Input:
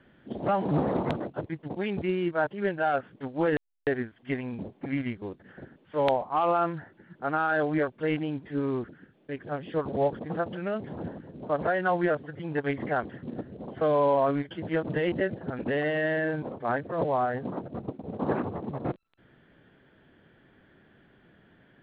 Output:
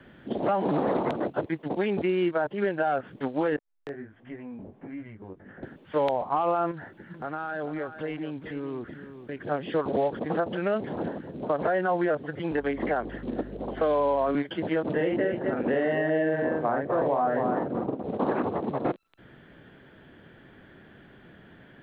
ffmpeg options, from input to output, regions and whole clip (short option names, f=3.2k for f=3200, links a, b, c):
-filter_complex "[0:a]asettb=1/sr,asplit=3[a][b][c];[a]atrim=end=3.564[d];[b]atrim=start=3.56:end=5.63,asetpts=PTS-STARTPTS,afade=t=in:d=0.004:c=qsin,afade=t=out:st=2.066:d=0.004:c=qsin,lowpass=1.9k,acompressor=threshold=-47dB:ratio=2.5:attack=3.2:release=140:knee=1:detection=peak,flanger=delay=17.5:depth=3.8:speed=1.4[e];[c]atrim=start=5.626[f];[d][e]acrossfade=d=0.004:c1=hsin:c2=qsin[g];[g][f]acrossfade=d=0.004:c1=qsin:c2=hsin,asettb=1/sr,asplit=3[h][i][j];[h]atrim=end=6.714[k];[i]atrim=start=6.71:end=9.44,asetpts=PTS-STARTPTS,afade=t=in:d=0.004:c=qsin,afade=t=out:st=2.726:d=0.004:c=qsin,acompressor=threshold=-41dB:ratio=3:attack=3.2:release=140:knee=1:detection=peak,aecho=1:1:431:0.266,atrim=end_sample=120393[l];[j]atrim=start=9.436[m];[k][l]acrossfade=d=0.004:c1=hsin:c2=qsin[n];[n][m]acrossfade=d=0.004:c1=qsin:c2=hsin,asettb=1/sr,asplit=3[o][p][q];[o]atrim=end=12.514[r];[p]atrim=start=12.51:end=14.35,asetpts=PTS-STARTPTS,afade=t=in:d=0.004:c=qsin,afade=t=out:st=1.836:d=0.004:c=qsin,highpass=f=170:w=0.5412,highpass=f=170:w=1.3066,aeval=exprs='val(0)+0.00891*(sin(2*PI*50*n/s)+sin(2*PI*2*50*n/s)/2+sin(2*PI*3*50*n/s)/3+sin(2*PI*4*50*n/s)/4+sin(2*PI*5*50*n/s)/5)':c=same[s];[q]atrim=start=14.346[t];[r][s]acrossfade=d=0.004:c1=hsin:c2=qsin[u];[u][t]acrossfade=d=0.004:c1=qsin:c2=hsin,asettb=1/sr,asplit=3[v][w][x];[v]atrim=end=14.934[y];[w]atrim=start=14.93:end=18.03,asetpts=PTS-STARTPTS,afade=t=in:d=0.004:c=qsin,afade=t=out:st=3.096:d=0.004:c=qsin,lowpass=f=1.7k:p=1,aecho=1:1:44|252|271:0.708|0.335|0.133,atrim=end_sample=136710[z];[x]atrim=start=18.026[aa];[y][z]acrossfade=d=0.004:c1=hsin:c2=qsin[ab];[ab][aa]acrossfade=d=0.004:c1=qsin:c2=hsin,alimiter=limit=-21dB:level=0:latency=1:release=143,acrossover=split=220|1100[ac][ad][ae];[ac]acompressor=threshold=-51dB:ratio=4[af];[ad]acompressor=threshold=-30dB:ratio=4[ag];[ae]acompressor=threshold=-43dB:ratio=4[ah];[af][ag][ah]amix=inputs=3:normalize=0,volume=7.5dB"